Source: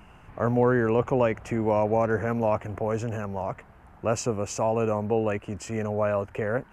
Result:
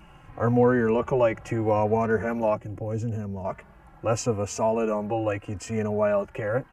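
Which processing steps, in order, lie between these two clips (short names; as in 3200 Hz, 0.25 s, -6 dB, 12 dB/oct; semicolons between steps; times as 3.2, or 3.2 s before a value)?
2.54–3.45 EQ curve 280 Hz 0 dB, 1100 Hz -14 dB, 6300 Hz -5 dB; endless flanger 3.1 ms -0.79 Hz; gain +3.5 dB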